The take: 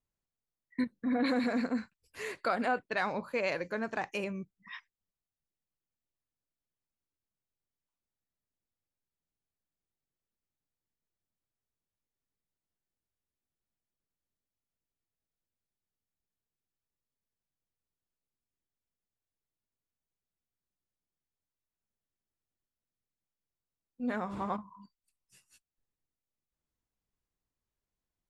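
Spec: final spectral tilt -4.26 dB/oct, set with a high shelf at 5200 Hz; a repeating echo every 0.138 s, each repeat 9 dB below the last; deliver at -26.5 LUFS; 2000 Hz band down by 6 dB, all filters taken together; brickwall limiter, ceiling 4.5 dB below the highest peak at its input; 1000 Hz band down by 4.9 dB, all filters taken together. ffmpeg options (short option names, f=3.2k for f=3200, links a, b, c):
-af "equalizer=f=1k:t=o:g=-6,equalizer=f=2k:t=o:g=-6.5,highshelf=f=5.2k:g=6,alimiter=level_in=2.5dB:limit=-24dB:level=0:latency=1,volume=-2.5dB,aecho=1:1:138|276|414|552:0.355|0.124|0.0435|0.0152,volume=10.5dB"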